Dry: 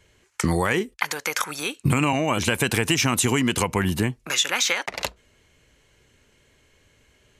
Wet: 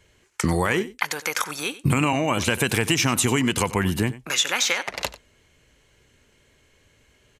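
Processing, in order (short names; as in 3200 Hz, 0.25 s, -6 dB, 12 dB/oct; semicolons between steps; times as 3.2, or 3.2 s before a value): echo 93 ms -17 dB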